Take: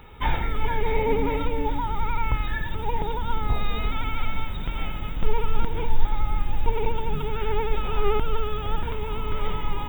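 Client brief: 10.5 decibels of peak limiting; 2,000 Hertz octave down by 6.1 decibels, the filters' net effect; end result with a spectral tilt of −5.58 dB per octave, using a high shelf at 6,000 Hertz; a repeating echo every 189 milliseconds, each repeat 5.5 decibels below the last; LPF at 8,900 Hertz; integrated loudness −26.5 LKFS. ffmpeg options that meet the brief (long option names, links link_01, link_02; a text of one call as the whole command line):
ffmpeg -i in.wav -af "lowpass=8900,equalizer=frequency=2000:width_type=o:gain=-7,highshelf=frequency=6000:gain=-3,alimiter=limit=-16.5dB:level=0:latency=1,aecho=1:1:189|378|567|756|945|1134|1323:0.531|0.281|0.149|0.079|0.0419|0.0222|0.0118,volume=3.5dB" out.wav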